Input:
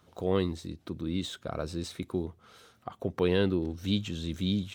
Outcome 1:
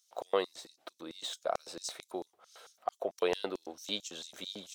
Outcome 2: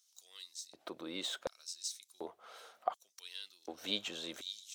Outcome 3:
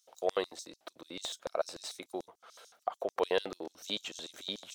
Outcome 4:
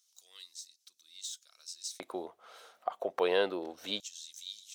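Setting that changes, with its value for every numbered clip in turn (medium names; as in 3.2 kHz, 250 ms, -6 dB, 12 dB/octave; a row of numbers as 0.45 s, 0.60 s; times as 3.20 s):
LFO high-pass, rate: 4.5 Hz, 0.68 Hz, 6.8 Hz, 0.25 Hz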